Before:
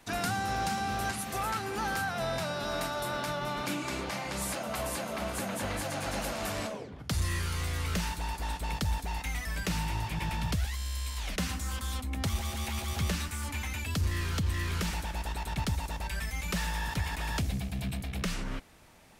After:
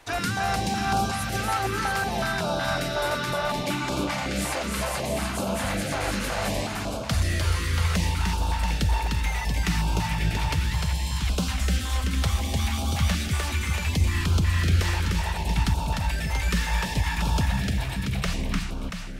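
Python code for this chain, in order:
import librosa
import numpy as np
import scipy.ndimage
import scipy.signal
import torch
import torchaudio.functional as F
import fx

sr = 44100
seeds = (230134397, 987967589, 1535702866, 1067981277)

p1 = fx.high_shelf(x, sr, hz=7900.0, db=-7.5)
p2 = p1 + fx.echo_multitap(p1, sr, ms=(301, 683), db=(-3.5, -7.0), dry=0)
p3 = fx.filter_held_notch(p2, sr, hz=5.4, low_hz=200.0, high_hz=1900.0)
y = p3 * 10.0 ** (6.5 / 20.0)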